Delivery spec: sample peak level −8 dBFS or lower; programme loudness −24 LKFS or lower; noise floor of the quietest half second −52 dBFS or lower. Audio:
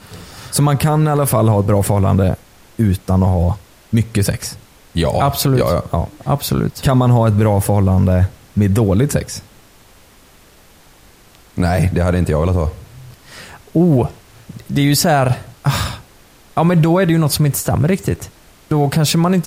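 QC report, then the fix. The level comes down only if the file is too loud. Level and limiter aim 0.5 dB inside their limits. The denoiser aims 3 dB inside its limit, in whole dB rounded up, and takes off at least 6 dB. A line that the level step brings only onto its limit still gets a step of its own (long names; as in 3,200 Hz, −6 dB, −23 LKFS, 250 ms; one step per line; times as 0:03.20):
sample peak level −5.0 dBFS: out of spec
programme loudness −16.0 LKFS: out of spec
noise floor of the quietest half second −46 dBFS: out of spec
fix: level −8.5 dB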